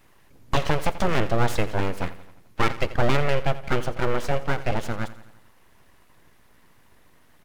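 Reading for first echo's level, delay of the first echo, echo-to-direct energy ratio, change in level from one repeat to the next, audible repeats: -16.0 dB, 86 ms, -14.5 dB, -5.0 dB, 4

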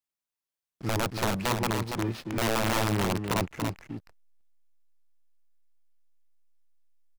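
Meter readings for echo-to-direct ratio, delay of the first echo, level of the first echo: -5.5 dB, 284 ms, -5.5 dB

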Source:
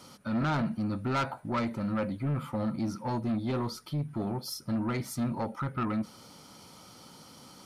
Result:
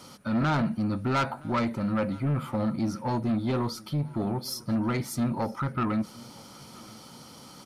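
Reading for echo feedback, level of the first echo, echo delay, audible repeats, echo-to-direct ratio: 46%, -23.5 dB, 969 ms, 2, -22.5 dB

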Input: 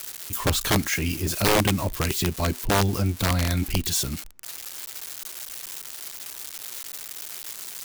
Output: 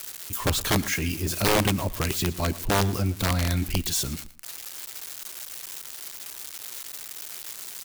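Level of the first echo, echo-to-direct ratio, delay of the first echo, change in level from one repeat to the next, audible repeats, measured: -18.0 dB, -18.0 dB, 115 ms, -13.0 dB, 2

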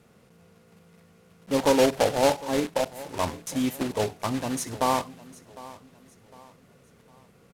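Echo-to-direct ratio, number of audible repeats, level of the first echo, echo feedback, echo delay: -18.5 dB, 2, -19.0 dB, 39%, 755 ms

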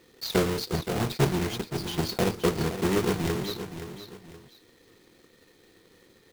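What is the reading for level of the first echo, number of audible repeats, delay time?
-10.5 dB, 2, 522 ms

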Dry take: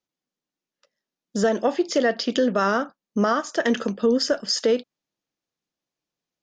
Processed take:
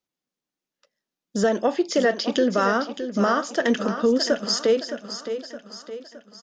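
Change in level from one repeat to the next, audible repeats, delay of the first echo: -6.5 dB, 4, 616 ms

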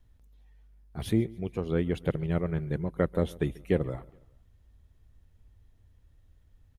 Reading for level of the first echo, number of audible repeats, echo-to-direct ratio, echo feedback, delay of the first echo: -22.0 dB, 2, -21.0 dB, 46%, 139 ms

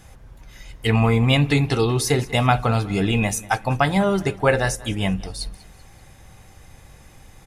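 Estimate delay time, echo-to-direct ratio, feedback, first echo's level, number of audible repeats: 192 ms, -19.5 dB, 44%, -20.5 dB, 3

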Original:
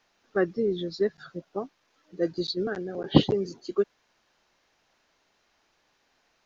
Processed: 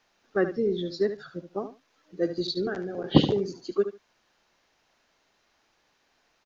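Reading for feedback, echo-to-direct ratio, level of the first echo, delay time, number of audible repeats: 16%, -10.5 dB, -10.5 dB, 73 ms, 2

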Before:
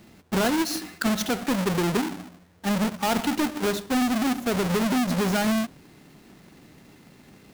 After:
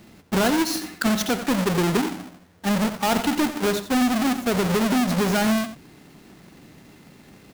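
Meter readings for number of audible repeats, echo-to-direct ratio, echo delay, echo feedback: 1, -12.5 dB, 88 ms, no regular repeats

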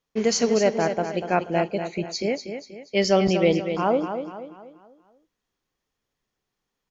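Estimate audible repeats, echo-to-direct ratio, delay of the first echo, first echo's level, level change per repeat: 4, -7.5 dB, 241 ms, -8.5 dB, -7.5 dB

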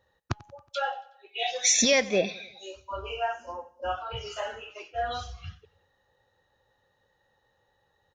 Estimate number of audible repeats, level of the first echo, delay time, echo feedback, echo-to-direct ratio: 3, -21.5 dB, 92 ms, 55%, -20.0 dB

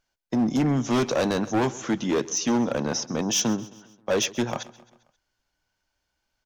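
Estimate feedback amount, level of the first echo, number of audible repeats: 52%, -19.5 dB, 3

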